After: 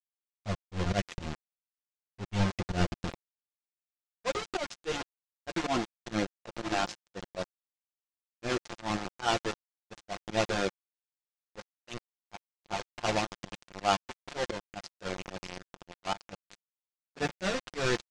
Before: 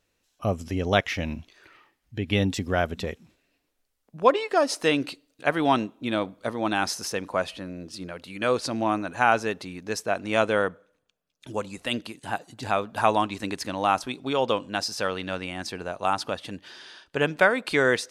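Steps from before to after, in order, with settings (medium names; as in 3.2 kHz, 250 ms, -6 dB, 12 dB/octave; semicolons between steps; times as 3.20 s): square wave that keeps the level; tape echo 740 ms, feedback 77%, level -18 dB, low-pass 3.4 kHz; chorus voices 4, 0.54 Hz, delay 10 ms, depth 1.5 ms; small samples zeroed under -22.5 dBFS; low-pass 7 kHz 24 dB/octave; gate with hold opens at -26 dBFS; slow attack 102 ms; comb 5.7 ms, depth 31%; trim -6.5 dB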